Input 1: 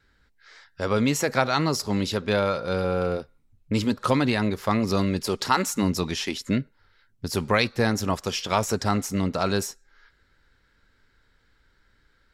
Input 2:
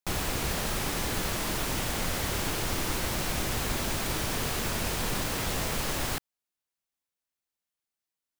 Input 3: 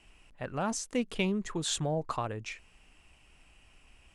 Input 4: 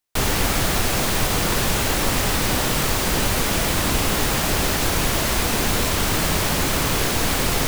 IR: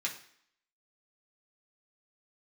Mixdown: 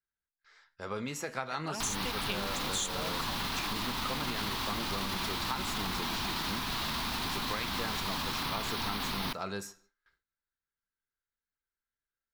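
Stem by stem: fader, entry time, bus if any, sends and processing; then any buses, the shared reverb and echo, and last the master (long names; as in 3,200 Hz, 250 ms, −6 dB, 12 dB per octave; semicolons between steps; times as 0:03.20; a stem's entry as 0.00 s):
−16.0 dB, 0.00 s, no bus, send −7.5 dB, parametric band 1,100 Hz +5 dB 1.2 octaves
−4.0 dB, 2.25 s, bus A, no send, no processing
−2.0 dB, 1.10 s, no bus, no send, spectral tilt +4 dB per octave; flanger swept by the level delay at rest 10.6 ms, full sweep at −28 dBFS
−13.5 dB, 1.65 s, bus A, send −15.5 dB, parametric band 7,400 Hz −14.5 dB 0.33 octaves
bus A: 0.0 dB, octave-band graphic EQ 250/500/1,000/4,000/8,000 Hz +8/−11/+12/+12/−4 dB; brickwall limiter −23.5 dBFS, peak gain reduction 9.5 dB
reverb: on, RT60 0.60 s, pre-delay 3 ms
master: noise gate with hold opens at −56 dBFS; downward compressor, threshold −30 dBFS, peak gain reduction 8.5 dB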